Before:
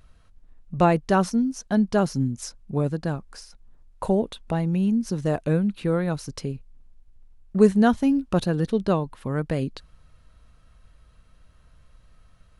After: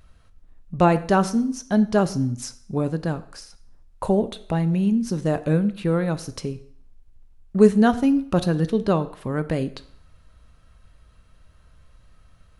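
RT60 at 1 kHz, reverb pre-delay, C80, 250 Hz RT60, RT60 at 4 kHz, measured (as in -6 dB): 0.65 s, 3 ms, 18.5 dB, 0.55 s, 0.60 s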